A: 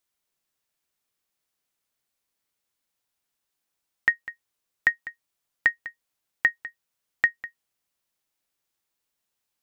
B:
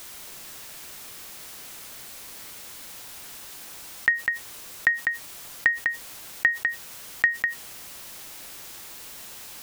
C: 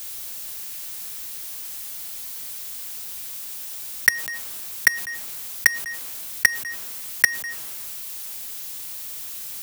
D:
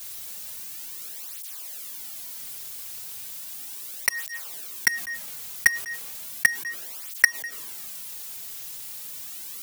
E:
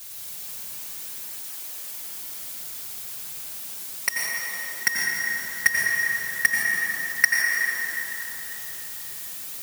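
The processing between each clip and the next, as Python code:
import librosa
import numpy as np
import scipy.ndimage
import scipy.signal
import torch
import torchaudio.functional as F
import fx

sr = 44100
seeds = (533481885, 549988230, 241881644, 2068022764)

y1 = fx.env_flatten(x, sr, amount_pct=70)
y2 = fx.high_shelf(y1, sr, hz=8600.0, db=11.5)
y2 = fx.quant_companded(y2, sr, bits=2)
y2 = fx.band_widen(y2, sr, depth_pct=40)
y2 = y2 * 10.0 ** (-7.0 / 20.0)
y3 = fx.flanger_cancel(y2, sr, hz=0.35, depth_ms=4.1)
y4 = fx.rev_plate(y3, sr, seeds[0], rt60_s=4.3, hf_ratio=0.45, predelay_ms=75, drr_db=-4.0)
y4 = y4 * 10.0 ** (-1.5 / 20.0)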